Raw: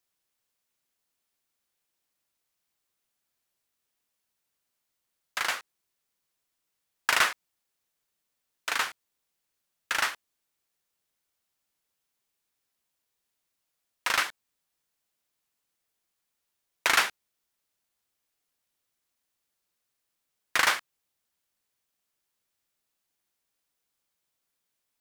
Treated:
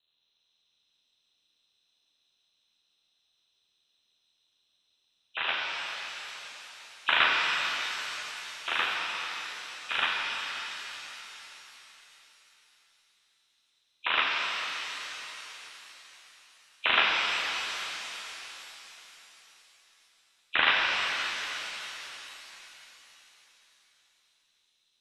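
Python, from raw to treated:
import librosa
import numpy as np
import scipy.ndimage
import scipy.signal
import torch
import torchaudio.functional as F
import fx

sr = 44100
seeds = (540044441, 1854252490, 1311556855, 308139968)

y = fx.freq_compress(x, sr, knee_hz=2400.0, ratio=4.0)
y = y * np.sin(2.0 * np.pi * 40.0 * np.arange(len(y)) / sr)
y = fx.rev_shimmer(y, sr, seeds[0], rt60_s=3.9, semitones=7, shimmer_db=-8, drr_db=-2.0)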